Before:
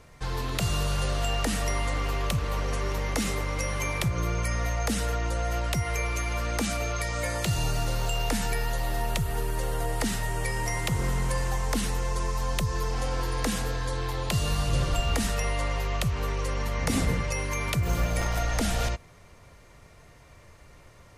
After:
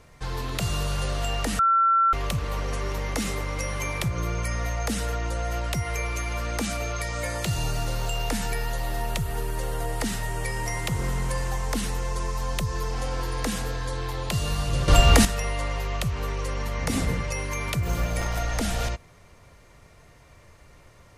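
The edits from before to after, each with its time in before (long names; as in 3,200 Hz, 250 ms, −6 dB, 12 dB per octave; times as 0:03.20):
0:01.59–0:02.13: beep over 1,350 Hz −16.5 dBFS
0:14.88–0:15.25: clip gain +10.5 dB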